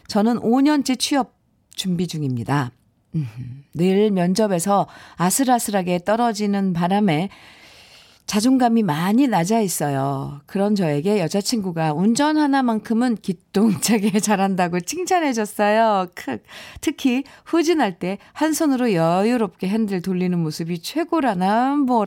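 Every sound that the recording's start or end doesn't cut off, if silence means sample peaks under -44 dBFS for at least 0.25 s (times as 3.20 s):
1.72–2.70 s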